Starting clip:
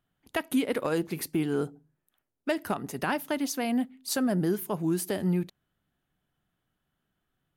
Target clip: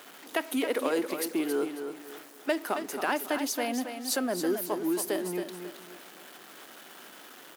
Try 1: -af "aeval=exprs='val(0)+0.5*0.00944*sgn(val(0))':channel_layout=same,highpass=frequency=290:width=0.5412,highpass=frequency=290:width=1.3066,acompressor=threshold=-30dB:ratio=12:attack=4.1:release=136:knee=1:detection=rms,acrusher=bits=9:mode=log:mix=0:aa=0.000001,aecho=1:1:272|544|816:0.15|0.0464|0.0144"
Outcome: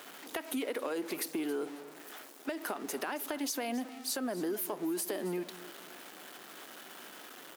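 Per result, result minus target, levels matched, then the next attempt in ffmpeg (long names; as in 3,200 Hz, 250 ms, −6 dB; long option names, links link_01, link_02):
downward compressor: peak gain reduction +12 dB; echo-to-direct −8.5 dB
-af "aeval=exprs='val(0)+0.5*0.00944*sgn(val(0))':channel_layout=same,highpass=frequency=290:width=0.5412,highpass=frequency=290:width=1.3066,acrusher=bits=9:mode=log:mix=0:aa=0.000001,aecho=1:1:272|544|816:0.15|0.0464|0.0144"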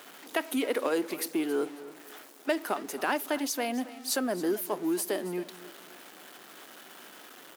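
echo-to-direct −8.5 dB
-af "aeval=exprs='val(0)+0.5*0.00944*sgn(val(0))':channel_layout=same,highpass=frequency=290:width=0.5412,highpass=frequency=290:width=1.3066,acrusher=bits=9:mode=log:mix=0:aa=0.000001,aecho=1:1:272|544|816|1088:0.398|0.123|0.0383|0.0119"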